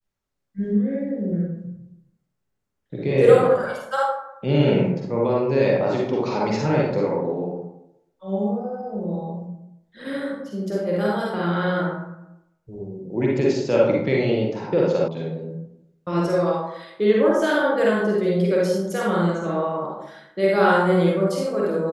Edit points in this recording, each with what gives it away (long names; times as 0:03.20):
0:15.08: cut off before it has died away